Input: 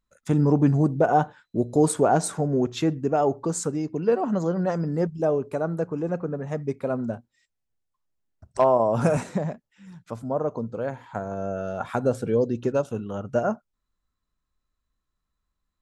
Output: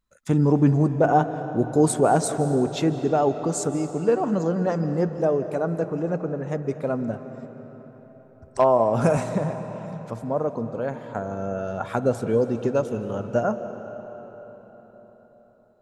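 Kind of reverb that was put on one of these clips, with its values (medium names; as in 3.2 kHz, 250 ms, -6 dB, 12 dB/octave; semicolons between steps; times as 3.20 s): algorithmic reverb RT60 4.6 s, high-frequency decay 0.7×, pre-delay 120 ms, DRR 10 dB; trim +1 dB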